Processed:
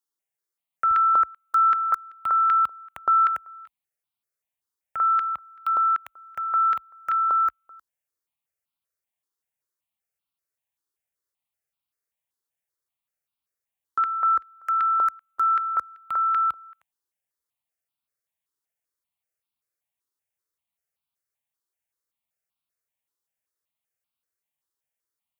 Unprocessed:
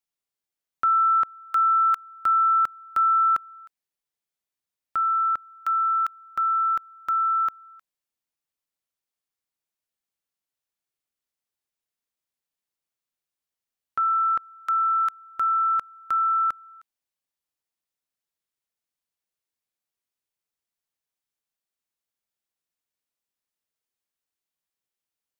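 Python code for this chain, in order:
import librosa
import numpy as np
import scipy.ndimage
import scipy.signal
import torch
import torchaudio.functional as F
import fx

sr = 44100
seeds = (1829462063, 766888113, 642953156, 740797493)

y = fx.highpass(x, sr, hz=fx.steps((0.0, 120.0), (0.91, 45.0)), slope=24)
y = fx.phaser_held(y, sr, hz=5.2, low_hz=650.0, high_hz=1800.0)
y = y * librosa.db_to_amplitude(2.5)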